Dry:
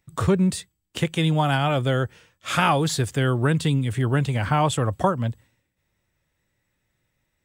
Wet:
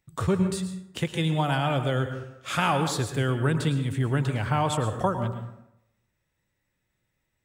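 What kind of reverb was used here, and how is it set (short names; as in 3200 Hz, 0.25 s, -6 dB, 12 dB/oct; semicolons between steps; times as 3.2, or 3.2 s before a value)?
plate-style reverb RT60 0.82 s, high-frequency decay 0.5×, pre-delay 95 ms, DRR 7.5 dB; gain -4.5 dB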